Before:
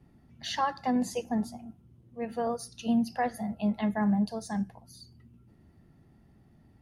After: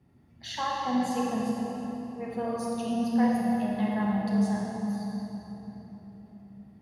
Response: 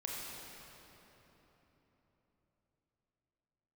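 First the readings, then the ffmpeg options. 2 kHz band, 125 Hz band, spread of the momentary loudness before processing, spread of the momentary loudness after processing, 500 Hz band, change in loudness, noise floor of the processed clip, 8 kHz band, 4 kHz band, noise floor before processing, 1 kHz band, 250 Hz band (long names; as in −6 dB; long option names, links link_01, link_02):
+1.0 dB, +2.0 dB, 13 LU, 20 LU, +1.5 dB, +1.5 dB, −58 dBFS, −0.5 dB, +0.5 dB, −61 dBFS, +1.5 dB, +3.0 dB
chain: -filter_complex "[0:a]highpass=57[link_01];[1:a]atrim=start_sample=2205[link_02];[link_01][link_02]afir=irnorm=-1:irlink=0"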